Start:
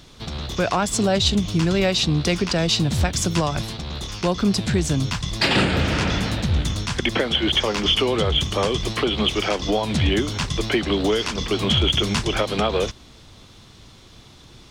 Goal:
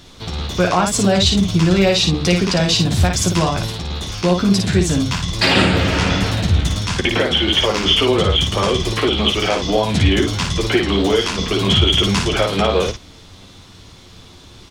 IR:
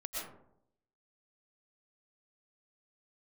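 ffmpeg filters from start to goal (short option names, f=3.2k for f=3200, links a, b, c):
-af "aecho=1:1:11|56:0.562|0.631,volume=2.5dB"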